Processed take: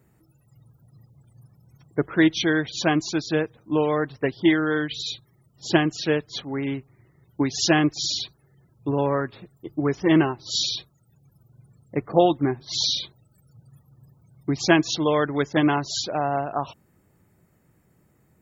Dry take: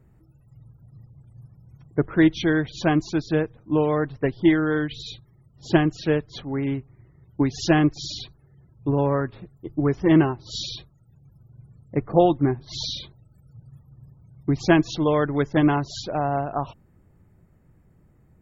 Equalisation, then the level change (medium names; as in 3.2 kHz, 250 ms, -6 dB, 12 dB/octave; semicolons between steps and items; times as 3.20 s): high-pass 190 Hz 6 dB/octave; treble shelf 3.2 kHz +11 dB; 0.0 dB